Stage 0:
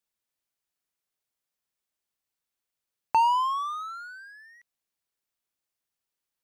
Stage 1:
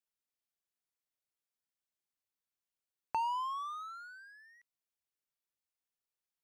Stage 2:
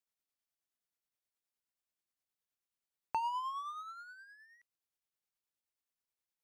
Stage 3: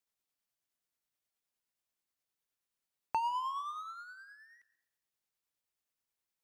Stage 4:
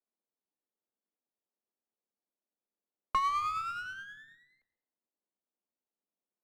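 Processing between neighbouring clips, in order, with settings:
downward compressor 1.5 to 1, threshold −29 dBFS, peak gain reduction 4.5 dB; level −8.5 dB
amplitude tremolo 9.5 Hz, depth 40%
dense smooth reverb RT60 0.8 s, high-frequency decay 0.75×, pre-delay 115 ms, DRR 17.5 dB; level +2 dB
frequency shifter +180 Hz; low-pass that shuts in the quiet parts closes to 670 Hz, open at −37.5 dBFS; windowed peak hold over 5 samples; level +4 dB

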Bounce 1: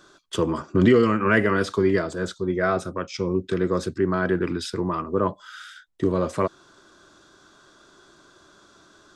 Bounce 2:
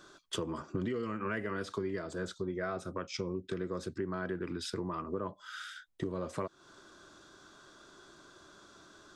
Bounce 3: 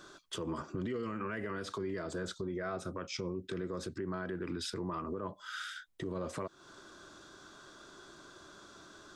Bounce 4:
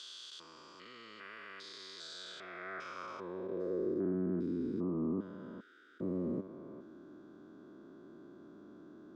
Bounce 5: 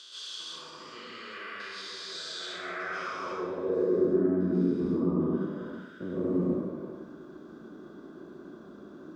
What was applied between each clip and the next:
downward compressor 5 to 1, threshold −31 dBFS, peak gain reduction 17 dB; level −3 dB
brickwall limiter −31.5 dBFS, peak gain reduction 8.5 dB; level +2.5 dB
spectrum averaged block by block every 400 ms; band-pass filter sweep 4,200 Hz → 250 Hz, 0:02.14–0:04.18; level +11.5 dB
dense smooth reverb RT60 0.97 s, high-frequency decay 0.95×, pre-delay 110 ms, DRR −9 dB

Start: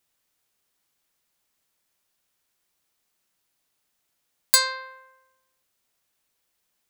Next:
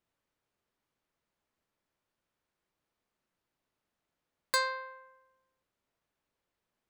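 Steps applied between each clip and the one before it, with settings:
low-pass filter 1,000 Hz 6 dB per octave
notch filter 760 Hz, Q 21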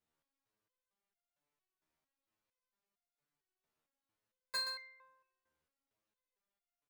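single-tap delay 128 ms −10 dB
step-sequenced resonator 4.4 Hz 78–700 Hz
level +4.5 dB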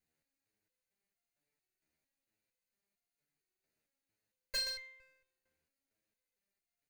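lower of the sound and its delayed copy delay 0.45 ms
level +2.5 dB

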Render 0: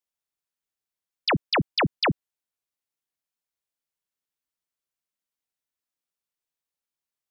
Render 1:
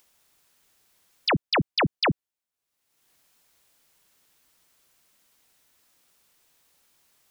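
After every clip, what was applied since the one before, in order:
upward compression, threshold −45 dBFS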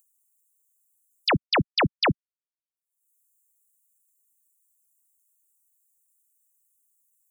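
spectral dynamics exaggerated over time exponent 2
level +2.5 dB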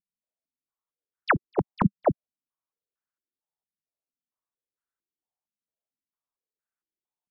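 downward compressor 2 to 1, threshold −26 dBFS, peak gain reduction 4.5 dB
low-pass on a step sequencer 4.4 Hz 200–1,500 Hz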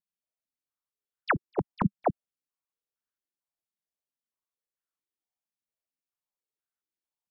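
wow of a warped record 45 rpm, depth 250 cents
level −4 dB

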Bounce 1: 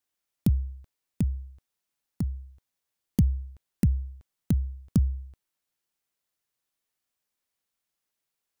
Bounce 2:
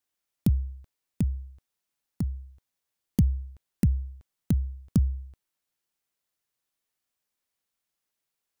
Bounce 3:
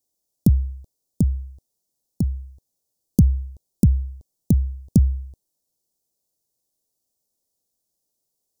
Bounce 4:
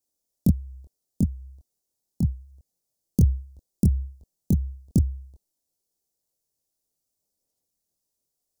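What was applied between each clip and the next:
no processing that can be heard
Chebyshev band-stop filter 590–5,600 Hz, order 2; level +8 dB
multi-voice chorus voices 4, 1.5 Hz, delay 24 ms, depth 3 ms

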